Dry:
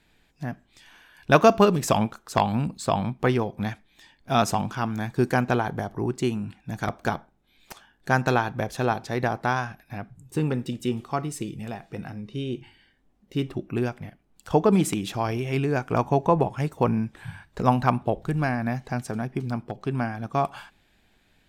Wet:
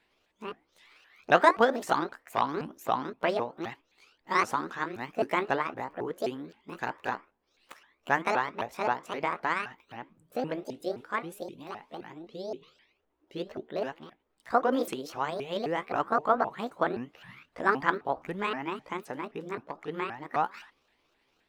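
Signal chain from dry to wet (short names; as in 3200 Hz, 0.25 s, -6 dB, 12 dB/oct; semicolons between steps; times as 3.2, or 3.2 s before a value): repeated pitch sweeps +10 st, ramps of 0.261 s; tone controls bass -15 dB, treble -10 dB; gain -2.5 dB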